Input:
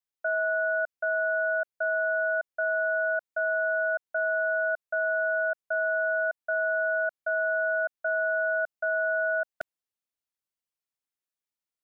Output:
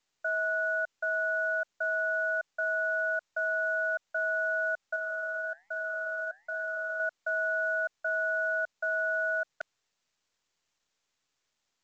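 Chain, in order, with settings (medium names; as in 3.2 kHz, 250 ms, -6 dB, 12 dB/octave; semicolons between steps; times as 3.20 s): high-pass 970 Hz 6 dB/octave; 4.96–7.00 s: flange 1.2 Hz, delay 3.9 ms, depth 5.2 ms, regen -88%; µ-law 128 kbps 16 kHz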